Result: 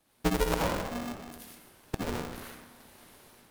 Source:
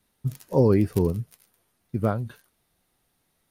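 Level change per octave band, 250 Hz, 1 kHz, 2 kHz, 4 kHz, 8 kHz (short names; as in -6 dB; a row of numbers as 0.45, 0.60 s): -9.0 dB, +1.0 dB, +7.0 dB, n/a, +7.5 dB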